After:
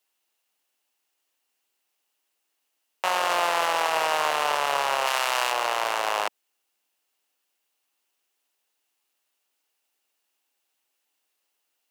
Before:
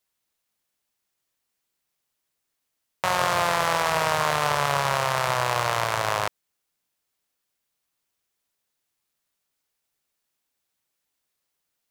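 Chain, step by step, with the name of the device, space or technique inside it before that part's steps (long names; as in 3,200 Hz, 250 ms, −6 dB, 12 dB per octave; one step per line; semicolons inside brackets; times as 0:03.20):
laptop speaker (high-pass filter 260 Hz 24 dB per octave; parametric band 810 Hz +4.5 dB 0.3 octaves; parametric band 2,800 Hz +7.5 dB 0.22 octaves; brickwall limiter −13 dBFS, peak gain reduction 6.5 dB)
0:05.06–0:05.52: tilt shelving filter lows −5 dB, about 1,200 Hz
level +2 dB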